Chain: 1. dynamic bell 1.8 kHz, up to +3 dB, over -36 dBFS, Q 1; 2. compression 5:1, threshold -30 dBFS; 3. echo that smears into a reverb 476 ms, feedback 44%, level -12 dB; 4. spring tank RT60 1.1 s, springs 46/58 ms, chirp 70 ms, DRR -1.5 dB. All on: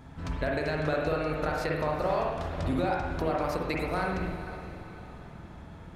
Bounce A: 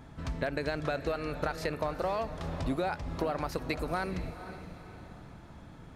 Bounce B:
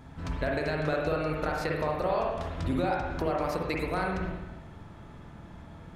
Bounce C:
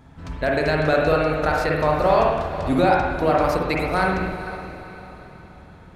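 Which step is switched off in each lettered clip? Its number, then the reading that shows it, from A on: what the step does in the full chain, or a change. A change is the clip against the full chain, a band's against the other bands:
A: 4, crest factor change +2.5 dB; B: 3, momentary loudness spread change +2 LU; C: 2, 125 Hz band -3.5 dB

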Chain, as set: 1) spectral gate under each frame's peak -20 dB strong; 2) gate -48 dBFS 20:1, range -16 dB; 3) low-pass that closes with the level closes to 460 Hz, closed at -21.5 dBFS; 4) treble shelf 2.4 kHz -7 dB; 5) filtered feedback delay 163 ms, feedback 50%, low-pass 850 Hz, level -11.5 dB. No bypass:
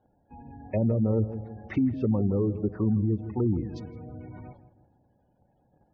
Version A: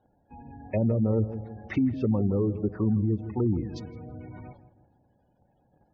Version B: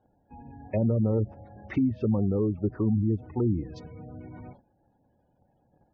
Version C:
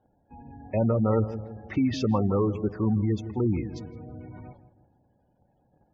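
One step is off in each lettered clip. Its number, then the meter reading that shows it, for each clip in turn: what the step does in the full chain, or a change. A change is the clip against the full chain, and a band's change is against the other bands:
4, 2 kHz band +2.5 dB; 5, echo-to-direct -16.0 dB to none; 3, 1 kHz band +7.5 dB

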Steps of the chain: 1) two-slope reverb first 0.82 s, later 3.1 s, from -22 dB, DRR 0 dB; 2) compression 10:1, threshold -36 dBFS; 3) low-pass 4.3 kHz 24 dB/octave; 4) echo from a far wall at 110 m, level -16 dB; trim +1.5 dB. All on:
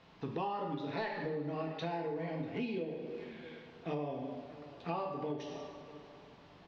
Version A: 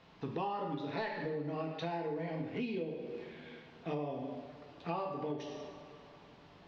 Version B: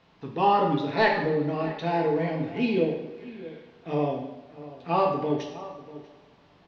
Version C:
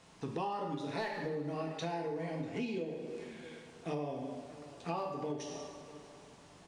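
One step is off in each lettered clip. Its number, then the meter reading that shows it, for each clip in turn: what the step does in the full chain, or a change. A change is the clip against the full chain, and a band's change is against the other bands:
4, momentary loudness spread change +1 LU; 2, mean gain reduction 7.5 dB; 3, 4 kHz band +1.5 dB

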